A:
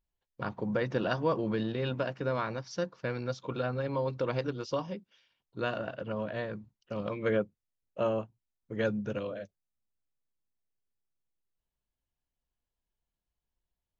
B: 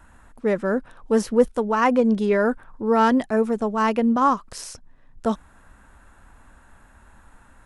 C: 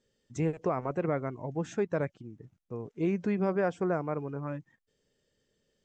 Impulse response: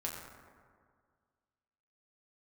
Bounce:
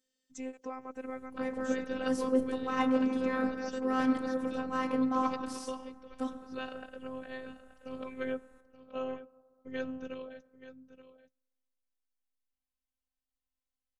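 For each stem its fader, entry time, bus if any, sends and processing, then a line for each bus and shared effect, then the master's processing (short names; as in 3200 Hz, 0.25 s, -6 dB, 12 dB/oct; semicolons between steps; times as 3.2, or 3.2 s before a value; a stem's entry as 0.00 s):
-4.0 dB, 0.95 s, send -19.5 dB, echo send -14 dB, dry
-13.0 dB, 0.95 s, send -3.5 dB, no echo send, dry
-6.5 dB, 0.00 s, no send, no echo send, HPF 130 Hz 12 dB/oct; high shelf 4300 Hz +10 dB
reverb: on, RT60 1.9 s, pre-delay 6 ms
echo: echo 0.878 s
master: bell 560 Hz -3 dB 1.4 oct; robotiser 260 Hz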